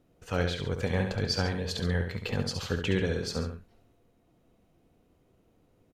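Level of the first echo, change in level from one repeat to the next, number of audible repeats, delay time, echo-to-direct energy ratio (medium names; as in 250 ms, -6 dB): -7.0 dB, -6.0 dB, 2, 69 ms, -6.0 dB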